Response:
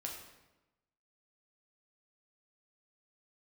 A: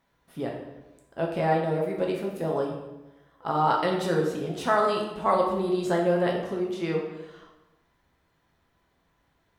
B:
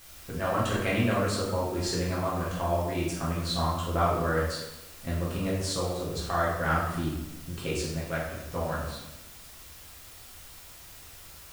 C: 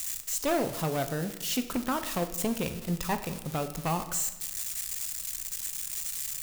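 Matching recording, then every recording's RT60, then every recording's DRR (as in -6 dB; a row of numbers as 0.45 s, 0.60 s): A; 1.0 s, 1.0 s, 1.0 s; -1.0 dB, -7.0 dB, 8.0 dB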